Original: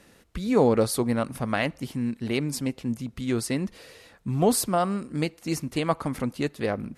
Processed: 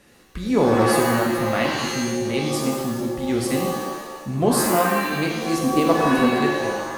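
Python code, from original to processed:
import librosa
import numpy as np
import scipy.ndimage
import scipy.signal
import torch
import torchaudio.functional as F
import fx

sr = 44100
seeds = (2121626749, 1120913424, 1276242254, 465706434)

y = fx.fade_out_tail(x, sr, length_s=0.57)
y = fx.small_body(y, sr, hz=(270.0, 490.0), ring_ms=45, db=11, at=(5.61, 6.29))
y = fx.rev_shimmer(y, sr, seeds[0], rt60_s=1.1, semitones=7, shimmer_db=-2, drr_db=0.0)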